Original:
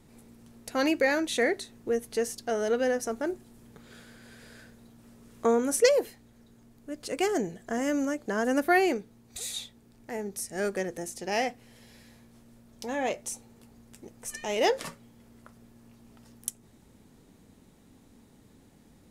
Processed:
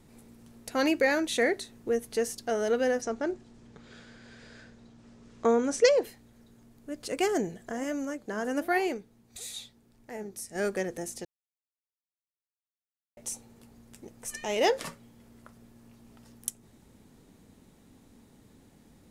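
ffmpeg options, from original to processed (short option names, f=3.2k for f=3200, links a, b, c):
-filter_complex "[0:a]asplit=3[a][b][c];[a]afade=t=out:st=3:d=0.02[d];[b]lowpass=f=7k:w=0.5412,lowpass=f=7k:w=1.3066,afade=t=in:st=3:d=0.02,afade=t=out:st=6.03:d=0.02[e];[c]afade=t=in:st=6.03:d=0.02[f];[d][e][f]amix=inputs=3:normalize=0,asplit=3[g][h][i];[g]afade=t=out:st=7.7:d=0.02[j];[h]flanger=delay=0.9:depth=10:regen=81:speed=1:shape=sinusoidal,afade=t=in:st=7.7:d=0.02,afade=t=out:st=10.54:d=0.02[k];[i]afade=t=in:st=10.54:d=0.02[l];[j][k][l]amix=inputs=3:normalize=0,asplit=3[m][n][o];[m]atrim=end=11.25,asetpts=PTS-STARTPTS,afade=t=out:st=11.246:d=0.004:c=hsin[p];[n]atrim=start=11.25:end=13.17,asetpts=PTS-STARTPTS,volume=0[q];[o]atrim=start=13.17,asetpts=PTS-STARTPTS,afade=t=in:d=0.004:c=hsin[r];[p][q][r]concat=n=3:v=0:a=1"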